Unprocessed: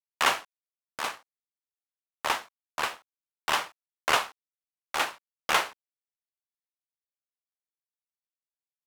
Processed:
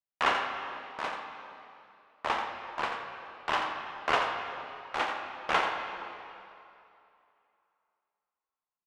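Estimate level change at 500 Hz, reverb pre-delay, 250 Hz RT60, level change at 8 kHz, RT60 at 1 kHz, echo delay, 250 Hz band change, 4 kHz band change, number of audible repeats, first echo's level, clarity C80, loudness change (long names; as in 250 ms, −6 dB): +1.0 dB, 3 ms, 2.5 s, −15.0 dB, 2.8 s, 86 ms, +1.5 dB, −5.5 dB, 1, −7.5 dB, 3.0 dB, −3.0 dB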